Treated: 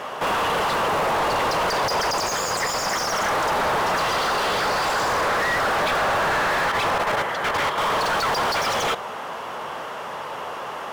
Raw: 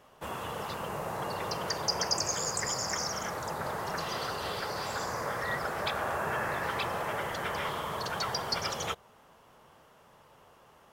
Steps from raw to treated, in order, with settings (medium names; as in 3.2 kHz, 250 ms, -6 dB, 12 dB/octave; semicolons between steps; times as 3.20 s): 6.62–7.78 s: level held to a coarse grid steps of 17 dB; overdrive pedal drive 36 dB, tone 2.3 kHz, clips at -15.5 dBFS; trim +1.5 dB